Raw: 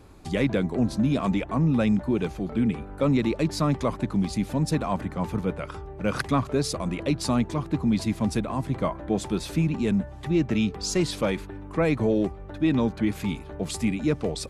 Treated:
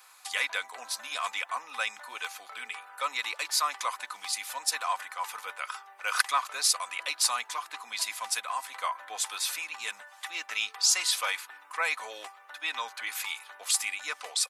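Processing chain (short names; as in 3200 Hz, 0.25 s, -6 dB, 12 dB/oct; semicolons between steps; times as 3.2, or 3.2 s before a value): HPF 1000 Hz 24 dB/oct; high shelf 8200 Hz +11 dB; comb 4 ms, depth 40%; gain +3.5 dB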